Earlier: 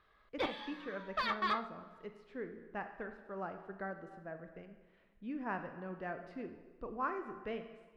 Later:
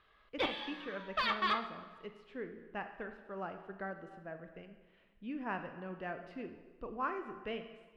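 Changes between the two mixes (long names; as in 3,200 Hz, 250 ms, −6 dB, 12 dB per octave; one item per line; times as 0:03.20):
background: send +8.5 dB
master: add parametric band 2,900 Hz +7.5 dB 0.54 octaves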